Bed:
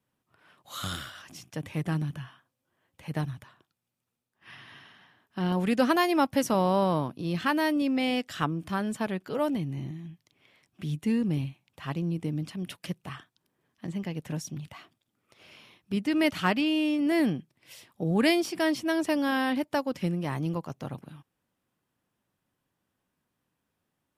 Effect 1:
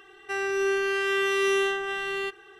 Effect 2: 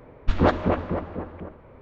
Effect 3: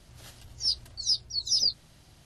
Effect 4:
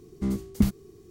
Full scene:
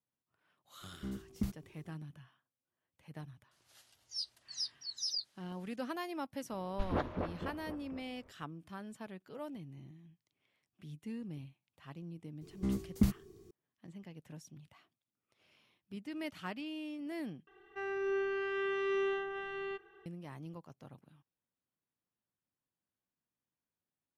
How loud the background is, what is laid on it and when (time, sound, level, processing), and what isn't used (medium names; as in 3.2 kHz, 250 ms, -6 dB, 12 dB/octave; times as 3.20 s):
bed -16.5 dB
0.81 s: add 4 -14 dB
3.51 s: add 3 -12 dB + high-pass 960 Hz 6 dB/octave
6.51 s: add 2 -15 dB
12.41 s: add 4 -6.5 dB
17.47 s: replace with 1 -7 dB + tape spacing loss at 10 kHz 31 dB